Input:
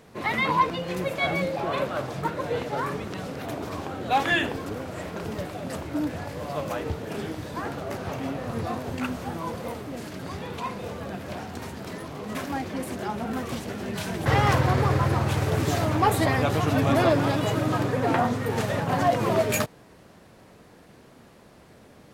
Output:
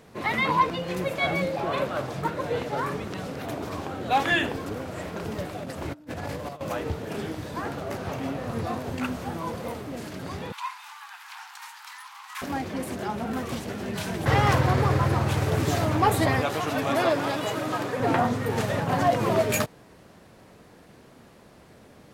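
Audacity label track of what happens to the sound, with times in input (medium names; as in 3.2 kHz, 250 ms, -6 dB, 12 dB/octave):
5.630000	6.610000	compressor with a negative ratio -35 dBFS, ratio -0.5
10.520000	12.420000	steep high-pass 830 Hz 96 dB/octave
16.410000	18.000000	high-pass 430 Hz 6 dB/octave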